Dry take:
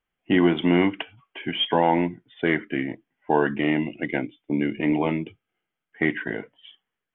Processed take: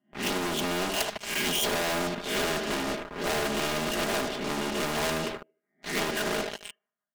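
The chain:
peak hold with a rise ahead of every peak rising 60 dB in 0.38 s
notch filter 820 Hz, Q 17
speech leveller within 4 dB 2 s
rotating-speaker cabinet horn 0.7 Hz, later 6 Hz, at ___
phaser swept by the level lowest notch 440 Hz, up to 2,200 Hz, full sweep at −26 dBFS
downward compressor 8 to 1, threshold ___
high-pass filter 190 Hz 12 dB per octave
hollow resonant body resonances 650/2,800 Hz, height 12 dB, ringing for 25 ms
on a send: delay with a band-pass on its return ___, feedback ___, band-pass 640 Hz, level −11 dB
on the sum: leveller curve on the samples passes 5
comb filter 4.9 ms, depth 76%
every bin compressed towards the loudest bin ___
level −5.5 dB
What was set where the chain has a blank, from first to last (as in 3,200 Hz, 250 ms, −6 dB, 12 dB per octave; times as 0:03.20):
0:04.86, −26 dBFS, 75 ms, 36%, 2 to 1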